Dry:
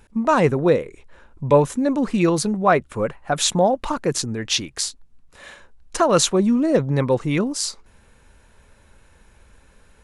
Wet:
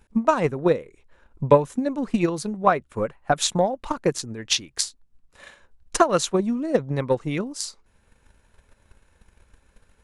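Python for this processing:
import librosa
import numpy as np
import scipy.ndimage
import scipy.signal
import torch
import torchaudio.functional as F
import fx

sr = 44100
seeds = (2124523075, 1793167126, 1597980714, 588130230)

y = fx.transient(x, sr, attack_db=11, sustain_db=-2)
y = y * librosa.db_to_amplitude(-8.0)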